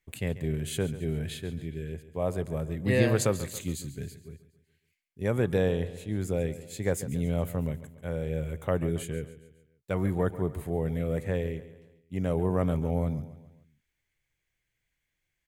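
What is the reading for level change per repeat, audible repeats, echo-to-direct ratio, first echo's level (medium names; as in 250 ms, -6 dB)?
-6.5 dB, 4, -14.0 dB, -15.0 dB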